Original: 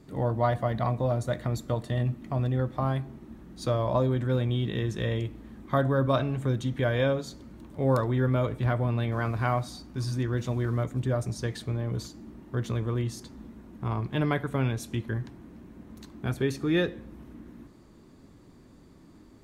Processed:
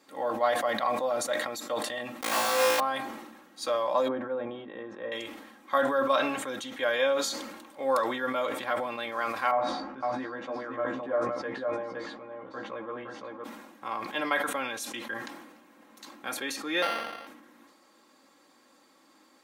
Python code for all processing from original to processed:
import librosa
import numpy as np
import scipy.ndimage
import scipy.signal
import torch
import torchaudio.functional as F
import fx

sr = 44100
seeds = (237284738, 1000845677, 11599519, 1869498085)

y = fx.chain(x, sr, fx.quant_companded(bits=2),
    fx.room_flutter(wall_m=3.0, rt60_s=0.9), at=(2.22, 2.8))
y = fx.chain(y, sr, fx.lowpass(hz=1000.0, slope=12),
    fx.hum_notches(base_hz=50, count=6), at=(4.08, 5.12))
y = fx.chain(y, sr, fx.lowpass(hz=1300.0, slope=12),
    fx.doubler(ms=15.0, db=-4.0),
    fx.echo_single(ms=514, db=-3.5), at=(9.51, 13.44))
y = fx.chain(y, sr, fx.sample_sort(block=64),
    fx.resample_linear(factor=6), at=(16.82, 17.27))
y = scipy.signal.sosfilt(scipy.signal.butter(2, 700.0, 'highpass', fs=sr, output='sos'), y)
y = y + 0.63 * np.pad(y, (int(3.7 * sr / 1000.0), 0))[:len(y)]
y = fx.sustainer(y, sr, db_per_s=48.0)
y = y * librosa.db_to_amplitude(2.5)